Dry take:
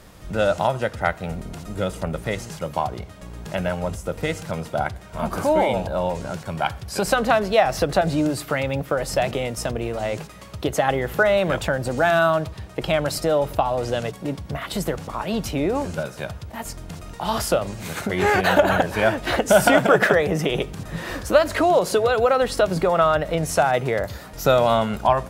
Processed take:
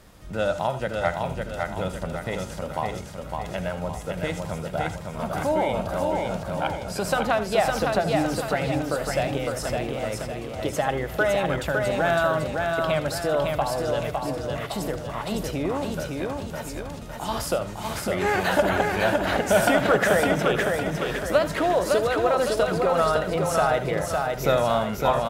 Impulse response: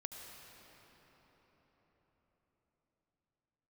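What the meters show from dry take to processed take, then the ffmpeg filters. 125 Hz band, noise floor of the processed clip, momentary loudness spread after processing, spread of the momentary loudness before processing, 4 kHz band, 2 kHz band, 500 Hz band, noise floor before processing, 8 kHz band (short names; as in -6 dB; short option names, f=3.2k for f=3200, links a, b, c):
-2.5 dB, -36 dBFS, 9 LU, 13 LU, -3.0 dB, -2.5 dB, -3.0 dB, -41 dBFS, -2.5 dB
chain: -filter_complex "[0:a]aecho=1:1:558|1116|1674|2232|2790|3348:0.668|0.307|0.141|0.0651|0.0299|0.0138[a];[1:a]atrim=start_sample=2205,atrim=end_sample=3969[b];[a][b]afir=irnorm=-1:irlink=0"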